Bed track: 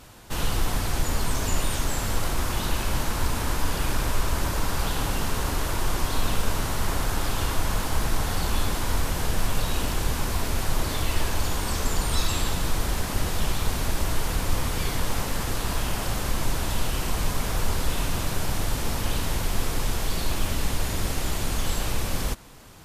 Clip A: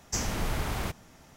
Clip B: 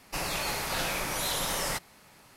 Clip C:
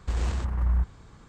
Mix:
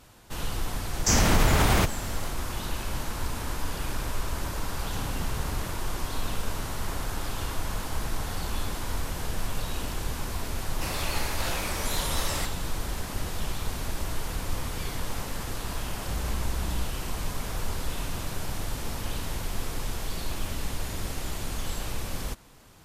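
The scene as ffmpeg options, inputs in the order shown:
-filter_complex "[1:a]asplit=2[a][b];[0:a]volume=-6dB[c];[a]alimiter=level_in=23dB:limit=-1dB:release=50:level=0:latency=1[d];[b]bass=f=250:g=9,treble=f=4k:g=-9[e];[3:a]asoftclip=type=hard:threshold=-29dB[f];[d]atrim=end=1.36,asetpts=PTS-STARTPTS,volume=-10.5dB,afade=t=in:d=0.004:c=hsin,afade=t=out:st=1.356:d=0.004:c=hsin,adelay=940[g];[e]atrim=end=1.36,asetpts=PTS-STARTPTS,volume=-11dB,afade=t=in:d=0.004:c=hsin,afade=t=out:st=1.356:d=0.004:c=hsin,adelay=4800[h];[2:a]atrim=end=2.36,asetpts=PTS-STARTPTS,volume=-2dB,afade=t=in:d=0.004:c=hsin,afade=t=out:st=2.356:d=0.004:c=hsin,adelay=10680[i];[f]atrim=end=1.28,asetpts=PTS-STARTPTS,volume=-2dB,afade=t=in:d=0.004:c=hsin,afade=t=out:st=1.276:d=0.004:c=hsin,adelay=16010[j];[c][g][h][i][j]amix=inputs=5:normalize=0"

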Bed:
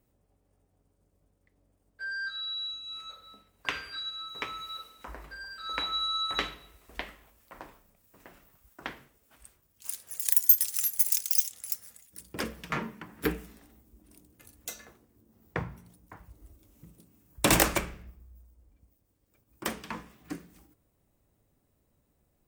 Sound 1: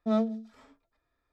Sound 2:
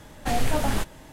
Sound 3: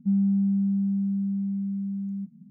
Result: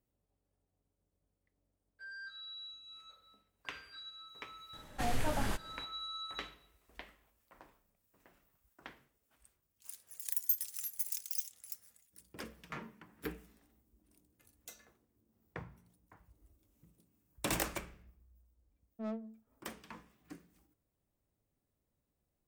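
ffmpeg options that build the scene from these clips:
-filter_complex "[0:a]volume=-12.5dB[a];[2:a]equalizer=f=1.4k:t=o:w=1.4:g=2.5[b];[1:a]adynamicsmooth=sensitivity=3:basefreq=760[c];[b]atrim=end=1.12,asetpts=PTS-STARTPTS,volume=-10dB,afade=t=in:d=0.004:c=hsin,afade=t=out:st=1.116:d=0.004:c=hsin,adelay=208593S[d];[c]atrim=end=1.32,asetpts=PTS-STARTPTS,volume=-14dB,afade=t=in:d=0.004:c=hsin,afade=t=out:st=1.316:d=0.004:c=hsin,adelay=18930[e];[a][d][e]amix=inputs=3:normalize=0"

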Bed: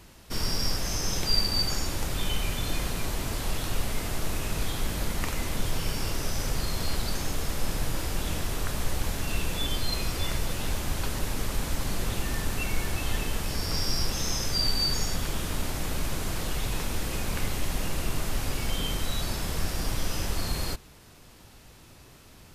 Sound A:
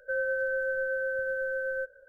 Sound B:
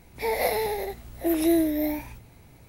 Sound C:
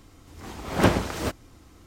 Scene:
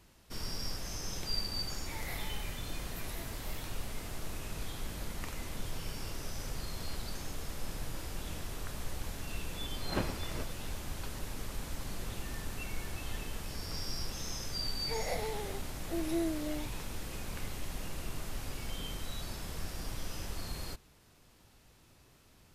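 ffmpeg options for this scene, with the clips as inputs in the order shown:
-filter_complex "[2:a]asplit=2[a][b];[0:a]volume=-10.5dB[c];[a]highpass=f=1.3k:t=q:w=2[d];[3:a]lowpass=5.6k[e];[b]lowpass=f=11k:w=0.5412,lowpass=f=11k:w=1.3066[f];[d]atrim=end=2.68,asetpts=PTS-STARTPTS,volume=-15.5dB,afade=t=in:d=0.004:c=hsin,afade=t=out:st=2.676:d=0.004:c=hsin,adelay=1670[g];[e]atrim=end=1.86,asetpts=PTS-STARTPTS,volume=-15dB,afade=t=in:d=0.004:c=hsin,afade=t=out:st=1.856:d=0.004:c=hsin,adelay=9130[h];[f]atrim=end=2.68,asetpts=PTS-STARTPTS,volume=-12dB,afade=t=in:d=0.004:c=hsin,afade=t=out:st=2.676:d=0.004:c=hsin,adelay=14670[i];[c][g][h][i]amix=inputs=4:normalize=0"

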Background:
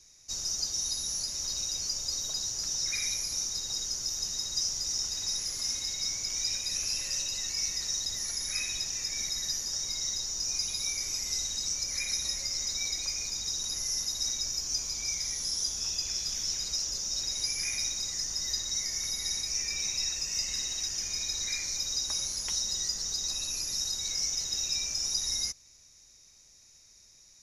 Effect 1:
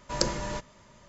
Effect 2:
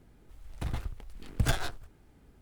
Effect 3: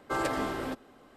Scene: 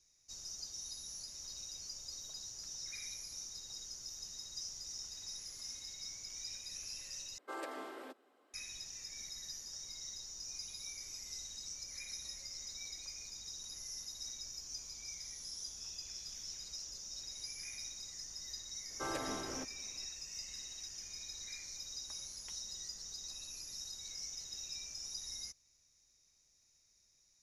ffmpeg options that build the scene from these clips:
-filter_complex "[3:a]asplit=2[a][b];[0:a]volume=-14dB[c];[a]highpass=f=300:w=0.5412,highpass=f=300:w=1.3066[d];[c]asplit=2[e][f];[e]atrim=end=7.384[g];[d]atrim=end=1.16,asetpts=PTS-STARTPTS,volume=-13dB[h];[f]atrim=start=8.536[i];[b]atrim=end=1.16,asetpts=PTS-STARTPTS,volume=-10dB,afade=t=in:d=0.004:c=hsin,afade=t=out:st=1.156:d=0.004:c=hsin,adelay=18900[j];[g][h]acrossfade=d=0.004:c1=hsin:c2=hsin[k];[k][i]acrossfade=d=0.004:c1=hsin:c2=hsin[l];[l][j]amix=inputs=2:normalize=0"

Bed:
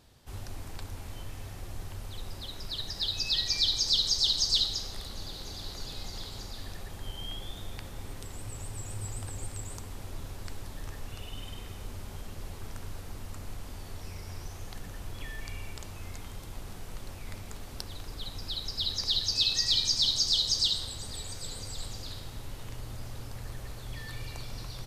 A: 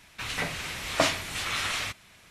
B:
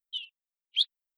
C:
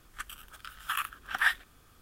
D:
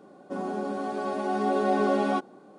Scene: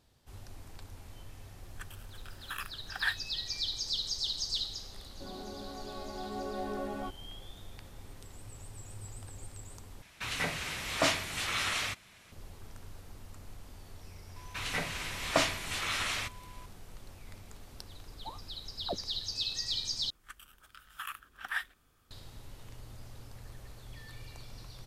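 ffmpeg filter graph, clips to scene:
-filter_complex "[3:a]asplit=2[a][b];[1:a]asplit=2[c][d];[0:a]volume=-8dB[e];[a]aecho=1:1:1.2:0.35[f];[c]alimiter=limit=-12.5dB:level=0:latency=1:release=11[g];[d]aeval=exprs='val(0)+0.00355*sin(2*PI*1000*n/s)':c=same[h];[2:a]lowpass=f=3.3k:t=q:w=0.5098,lowpass=f=3.3k:t=q:w=0.6013,lowpass=f=3.3k:t=q:w=0.9,lowpass=f=3.3k:t=q:w=2.563,afreqshift=-3900[i];[e]asplit=3[j][k][l];[j]atrim=end=10.024[m];[g]atrim=end=2.3,asetpts=PTS-STARTPTS,volume=-2.5dB[n];[k]atrim=start=12.316:end=20.104[o];[b]atrim=end=2.01,asetpts=PTS-STARTPTS,volume=-9dB[p];[l]atrim=start=22.106[q];[f]atrim=end=2.01,asetpts=PTS-STARTPTS,volume=-8dB,afade=t=in:d=0.004:c=hsin,afade=t=out:st=2.006:d=0.004:c=hsin,adelay=1610[r];[4:a]atrim=end=2.58,asetpts=PTS-STARTPTS,volume=-13.5dB,afade=t=in:d=0.004:c=hsin,afade=t=out:st=2.576:d=0.004:c=hsin,adelay=4900[s];[h]atrim=end=2.3,asetpts=PTS-STARTPTS,volume=-3.5dB,afade=t=in:d=0.004:c=hsin,afade=t=out:st=2.296:d=0.004:c=hsin,adelay=14360[t];[i]atrim=end=1.17,asetpts=PTS-STARTPTS,volume=-6.5dB,afade=t=in:d=0.004:c=hsin,afade=t=out:st=1.166:d=0.004:c=hsin,adelay=799092S[u];[m][n]acrossfade=d=0.004:c1=hsin:c2=hsin[v];[v][o]acrossfade=d=0.004:c1=hsin:c2=hsin[w];[w][p]acrossfade=d=0.004:c1=hsin:c2=hsin[x];[x][q]acrossfade=d=0.004:c1=hsin:c2=hsin[y];[y][r][s][t][u]amix=inputs=5:normalize=0"

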